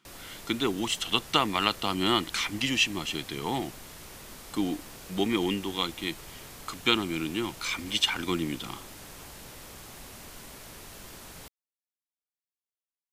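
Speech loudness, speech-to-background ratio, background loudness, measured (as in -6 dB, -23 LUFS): -28.5 LUFS, 16.0 dB, -44.5 LUFS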